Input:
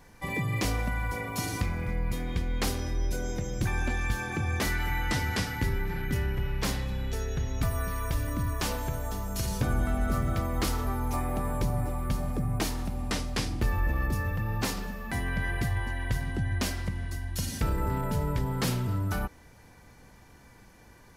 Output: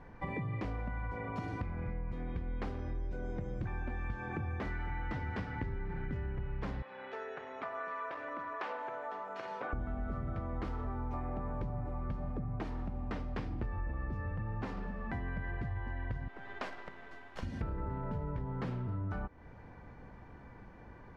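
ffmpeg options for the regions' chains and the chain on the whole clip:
ffmpeg -i in.wav -filter_complex "[0:a]asettb=1/sr,asplit=3[link_01][link_02][link_03];[link_01]atrim=end=6.824[link_04];[link_02]atrim=start=6.82:end=9.73,asetpts=PTS-STARTPTS,afade=type=in:duration=0.004:curve=qsin,afade=type=out:start_time=2.906:duration=0.004:curve=qsin,aeval=exprs='clip(val(0),-1,0.0596)':channel_layout=same,highpass=450,lowpass=2300,aemphasis=mode=production:type=riaa[link_05];[link_03]atrim=start=9.726[link_06];[link_04][link_05]acrossfade=duration=0.004:curve1=hsin:curve2=qsin[link_07];[link_07][link_06]acrossfade=duration=0.004:curve1=qsin:curve2=hsin,asettb=1/sr,asplit=3[link_08][link_09][link_10];[link_08]atrim=end=16.284[link_11];[link_09]atrim=start=16.28:end=17.43,asetpts=PTS-STARTPTS,afade=type=in:duration=0.004:curve=qsin,afade=type=out:start_time=1.146:duration=0.004:curve=qsin,highpass=530,acrusher=bits=6:dc=4:mix=0:aa=0.000001[link_12];[link_10]atrim=start=17.426[link_13];[link_11][link_12]acrossfade=duration=0.004:curve1=hsin:curve2=qsin[link_14];[link_14][link_13]acrossfade=duration=0.004:curve1=qsin:curve2=hsin,lowpass=1600,acompressor=threshold=-39dB:ratio=4,volume=2.5dB" out.wav

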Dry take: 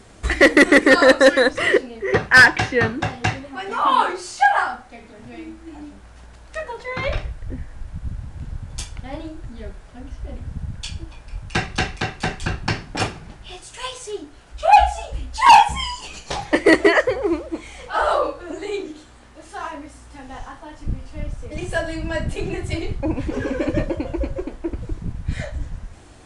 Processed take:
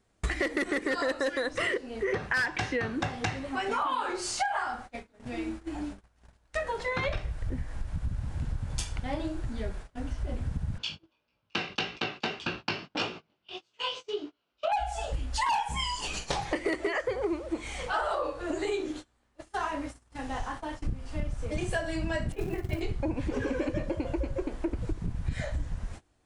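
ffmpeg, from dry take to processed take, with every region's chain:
ffmpeg -i in.wav -filter_complex "[0:a]asettb=1/sr,asplit=3[link_01][link_02][link_03];[link_01]atrim=end=10.784[link_04];[link_02]atrim=start=10.78:end=14.72,asetpts=PTS-STARTPTS,afade=type=in:duration=0.004:curve=qsin,afade=type=out:start_time=3.936:duration=0.004:curve=qsin,flanger=delay=16.5:depth=5.3:speed=1.7,highpass=240,equalizer=frequency=790:width_type=q:width=4:gain=-6,equalizer=frequency=1800:width_type=q:width=4:gain=-9,equalizer=frequency=2900:width_type=q:width=4:gain=5,lowpass=frequency=5100:width=0.5412,lowpass=frequency=5100:width=1.3066[link_05];[link_03]atrim=start=14.716[link_06];[link_04][link_05]acrossfade=duration=0.004:curve1=hsin:curve2=qsin[link_07];[link_07][link_06]acrossfade=duration=0.004:curve1=qsin:curve2=hsin,asettb=1/sr,asplit=3[link_08][link_09][link_10];[link_08]atrim=end=22.324[link_11];[link_09]atrim=start=22.32:end=22.81,asetpts=PTS-STARTPTS,afade=type=in:duration=0.004:curve=qsin,afade=type=out:start_time=0.486:duration=0.004:curve=qsin,agate=range=-33dB:threshold=-23dB:ratio=3:release=100:detection=peak,lowpass=2200,acrusher=bits=6:mode=log:mix=0:aa=0.000001[link_12];[link_10]atrim=start=22.806[link_13];[link_11][link_12]acrossfade=duration=0.004:curve1=hsin:curve2=qsin[link_14];[link_14][link_13]acrossfade=duration=0.004:curve1=qsin:curve2=hsin,agate=range=-26dB:threshold=-39dB:ratio=16:detection=peak,alimiter=limit=-10.5dB:level=0:latency=1:release=112,acompressor=threshold=-29dB:ratio=6,volume=1.5dB" out.wav

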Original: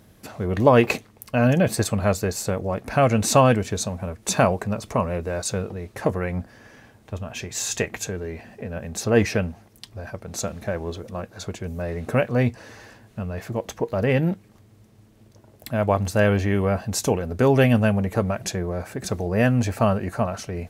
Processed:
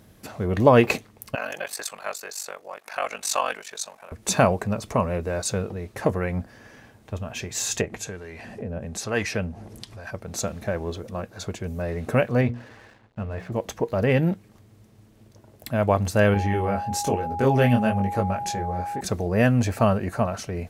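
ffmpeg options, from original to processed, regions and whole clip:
ffmpeg -i in.wav -filter_complex "[0:a]asettb=1/sr,asplit=3[link_01][link_02][link_03];[link_01]atrim=end=1.354[link_04];[link_02]atrim=start=1.35:end=4.12,asetpts=PTS-STARTPTS,afade=type=in:duration=0.004:curve=qsin,afade=type=out:start_time=2.766:duration=0.004:curve=qsin,highpass=940,aeval=exprs='val(0)*sin(2*PI*24*n/s)':channel_layout=same[link_05];[link_03]atrim=start=4.116[link_06];[link_04][link_05]acrossfade=duration=0.004:curve1=hsin:curve2=qsin[link_07];[link_07][link_06]acrossfade=duration=0.004:curve1=qsin:curve2=hsin,asettb=1/sr,asplit=3[link_08][link_09][link_10];[link_08]atrim=end=7.814[link_11];[link_09]atrim=start=7.81:end=10.11,asetpts=PTS-STARTPTS,afade=type=in:duration=0.004:curve=qsin,afade=type=out:start_time=2.296:duration=0.004:curve=qsin,lowpass=frequency=12000:width=0.5412,lowpass=frequency=12000:width=1.3066,acompressor=mode=upward:threshold=-26dB:ratio=2.5:attack=3.2:release=140:knee=2.83:detection=peak,acrossover=split=810[link_12][link_13];[link_12]aeval=exprs='val(0)*(1-0.7/2+0.7/2*cos(2*PI*1.1*n/s))':channel_layout=same[link_14];[link_13]aeval=exprs='val(0)*(1-0.7/2-0.7/2*cos(2*PI*1.1*n/s))':channel_layout=same[link_15];[link_14][link_15]amix=inputs=2:normalize=0[link_16];[link_10]atrim=start=10.106[link_17];[link_11][link_16]acrossfade=duration=0.004:curve1=hsin:curve2=qsin[link_18];[link_18][link_17]acrossfade=duration=0.004:curve1=qsin:curve2=hsin,asettb=1/sr,asplit=3[link_19][link_20][link_21];[link_19]atrim=end=12.414[link_22];[link_20]atrim=start=12.41:end=13.52,asetpts=PTS-STARTPTS,afade=type=in:duration=0.004:curve=qsin,afade=type=out:start_time=1.106:duration=0.004:curve=qsin,lowpass=3100,aeval=exprs='sgn(val(0))*max(abs(val(0))-0.00251,0)':channel_layout=same,bandreject=frequency=60:width_type=h:width=6,bandreject=frequency=120:width_type=h:width=6,bandreject=frequency=180:width_type=h:width=6,bandreject=frequency=240:width_type=h:width=6,bandreject=frequency=300:width_type=h:width=6,bandreject=frequency=360:width_type=h:width=6,bandreject=frequency=420:width_type=h:width=6,bandreject=frequency=480:width_type=h:width=6,bandreject=frequency=540:width_type=h:width=6,bandreject=frequency=600:width_type=h:width=6[link_23];[link_21]atrim=start=13.516[link_24];[link_22][link_23]acrossfade=duration=0.004:curve1=hsin:curve2=qsin[link_25];[link_25][link_24]acrossfade=duration=0.004:curve1=qsin:curve2=hsin,asettb=1/sr,asplit=3[link_26][link_27][link_28];[link_26]atrim=end=16.344[link_29];[link_27]atrim=start=16.34:end=19.01,asetpts=PTS-STARTPTS,afade=type=in:duration=0.004:curve=qsin,afade=type=out:start_time=2.666:duration=0.004:curve=qsin,flanger=delay=19.5:depth=5.3:speed=1.1,aeval=exprs='val(0)+0.0398*sin(2*PI*820*n/s)':channel_layout=same[link_30];[link_28]atrim=start=19.006[link_31];[link_29][link_30]acrossfade=duration=0.004:curve1=hsin:curve2=qsin[link_32];[link_32][link_31]acrossfade=duration=0.004:curve1=qsin:curve2=hsin" out.wav

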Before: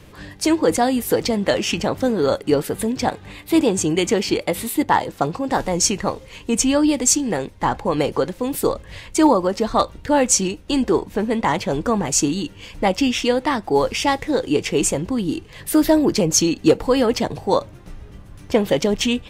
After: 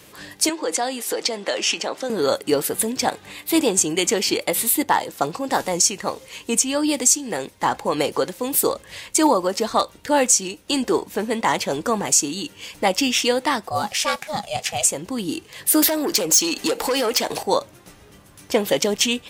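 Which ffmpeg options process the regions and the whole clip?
ffmpeg -i in.wav -filter_complex "[0:a]asettb=1/sr,asplit=3[link_01][link_02][link_03];[link_01]atrim=end=0.494[link_04];[link_02]atrim=start=0.49:end=2.1,asetpts=PTS-STARTPTS,afade=type=in:duration=0.004:curve=qsin,afade=type=out:start_time=1.606:duration=0.004:curve=qsin,acompressor=threshold=-18dB:ratio=2.5:attack=3.2:release=140:knee=1:detection=peak,highpass=340,lowpass=7100[link_05];[link_03]atrim=start=2.096[link_06];[link_04][link_05]acrossfade=duration=0.004:curve1=hsin:curve2=qsin[link_07];[link_07][link_06]acrossfade=duration=0.004:curve1=qsin:curve2=hsin,asettb=1/sr,asplit=3[link_08][link_09][link_10];[link_08]atrim=end=13.684[link_11];[link_09]atrim=start=13.68:end=14.85,asetpts=PTS-STARTPTS,afade=type=in:duration=0.004:curve=qsin,afade=type=out:start_time=1.166:duration=0.004:curve=qsin,highpass=frequency=300:poles=1,aeval=exprs='val(0)*sin(2*PI*310*n/s)':channel_layout=same[link_12];[link_10]atrim=start=14.846[link_13];[link_11][link_12]acrossfade=duration=0.004:curve1=hsin:curve2=qsin[link_14];[link_14][link_13]acrossfade=duration=0.004:curve1=qsin:curve2=hsin,asettb=1/sr,asplit=3[link_15][link_16][link_17];[link_15]atrim=end=15.824[link_18];[link_16]atrim=start=15.82:end=17.43,asetpts=PTS-STARTPTS,afade=type=in:duration=0.004:curve=qsin,afade=type=out:start_time=1.606:duration=0.004:curve=qsin,equalizer=frequency=110:width=0.59:gain=-14,acompressor=threshold=-29dB:ratio=3:attack=3.2:release=140:knee=1:detection=peak,aeval=exprs='0.178*sin(PI/2*2.51*val(0)/0.178)':channel_layout=same[link_19];[link_17]atrim=start=17.426[link_20];[link_18][link_19]acrossfade=duration=0.004:curve1=hsin:curve2=qsin[link_21];[link_21][link_20]acrossfade=duration=0.004:curve1=qsin:curve2=hsin,highpass=frequency=330:poles=1,highshelf=frequency=5200:gain=11.5,alimiter=limit=-5dB:level=0:latency=1:release=350" out.wav

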